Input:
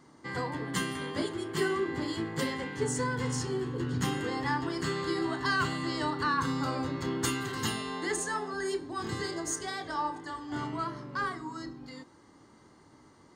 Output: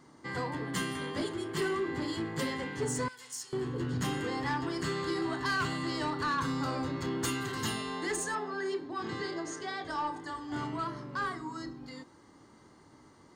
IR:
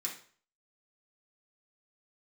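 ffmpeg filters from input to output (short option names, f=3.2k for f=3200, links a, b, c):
-filter_complex "[0:a]asoftclip=type=tanh:threshold=-25dB,asettb=1/sr,asplit=3[a][b][c];[a]atrim=end=3.084[d];[b]atrim=start=3.08:end=3.53,asetpts=PTS-STARTPTS,afade=t=in:d=0.004:c=qsin,afade=t=out:st=0.446:d=0.004:c=qsin,aderivative[e];[c]atrim=start=3.526[f];[d][e]acrossfade=d=0.004:c1=hsin:c2=qsin[g];[g][f]acrossfade=d=0.004:c1=qsin:c2=hsin,asettb=1/sr,asplit=3[h][i][j];[h]atrim=end=8.354[k];[i]atrim=start=8.35:end=9.85,asetpts=PTS-STARTPTS,afade=t=in:d=0.004:c=qsin,afade=t=out:st=1.496:d=0.004:c=qsin,highpass=150,lowpass=4.4k[l];[j]atrim=start=9.846[m];[k][l]acrossfade=d=0.004:c1=hsin:c2=qsin[n];[n][m]acrossfade=d=0.004:c1=qsin:c2=hsin"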